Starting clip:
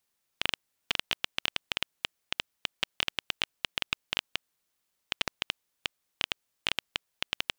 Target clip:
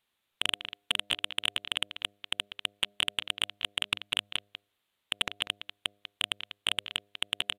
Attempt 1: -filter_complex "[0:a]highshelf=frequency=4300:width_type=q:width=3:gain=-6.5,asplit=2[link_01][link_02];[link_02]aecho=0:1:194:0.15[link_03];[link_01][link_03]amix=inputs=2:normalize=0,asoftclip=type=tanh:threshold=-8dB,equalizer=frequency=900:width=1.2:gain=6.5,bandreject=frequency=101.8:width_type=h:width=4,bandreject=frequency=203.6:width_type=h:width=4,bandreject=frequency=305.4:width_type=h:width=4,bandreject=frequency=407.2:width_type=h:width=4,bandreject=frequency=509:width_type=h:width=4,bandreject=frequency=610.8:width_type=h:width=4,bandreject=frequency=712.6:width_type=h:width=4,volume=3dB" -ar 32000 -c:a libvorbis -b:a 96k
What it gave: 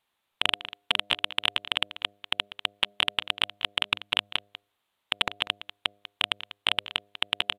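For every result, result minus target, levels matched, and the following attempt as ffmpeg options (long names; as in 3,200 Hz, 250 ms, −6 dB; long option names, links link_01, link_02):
soft clipping: distortion −10 dB; 1,000 Hz band +4.5 dB
-filter_complex "[0:a]highshelf=frequency=4300:width_type=q:width=3:gain=-6.5,asplit=2[link_01][link_02];[link_02]aecho=0:1:194:0.15[link_03];[link_01][link_03]amix=inputs=2:normalize=0,asoftclip=type=tanh:threshold=-15.5dB,equalizer=frequency=900:width=1.2:gain=6.5,bandreject=frequency=101.8:width_type=h:width=4,bandreject=frequency=203.6:width_type=h:width=4,bandreject=frequency=305.4:width_type=h:width=4,bandreject=frequency=407.2:width_type=h:width=4,bandreject=frequency=509:width_type=h:width=4,bandreject=frequency=610.8:width_type=h:width=4,bandreject=frequency=712.6:width_type=h:width=4,volume=3dB" -ar 32000 -c:a libvorbis -b:a 96k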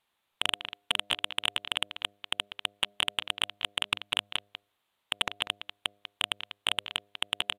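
1,000 Hz band +4.5 dB
-filter_complex "[0:a]highshelf=frequency=4300:width_type=q:width=3:gain=-6.5,asplit=2[link_01][link_02];[link_02]aecho=0:1:194:0.15[link_03];[link_01][link_03]amix=inputs=2:normalize=0,asoftclip=type=tanh:threshold=-15.5dB,bandreject=frequency=101.8:width_type=h:width=4,bandreject=frequency=203.6:width_type=h:width=4,bandreject=frequency=305.4:width_type=h:width=4,bandreject=frequency=407.2:width_type=h:width=4,bandreject=frequency=509:width_type=h:width=4,bandreject=frequency=610.8:width_type=h:width=4,bandreject=frequency=712.6:width_type=h:width=4,volume=3dB" -ar 32000 -c:a libvorbis -b:a 96k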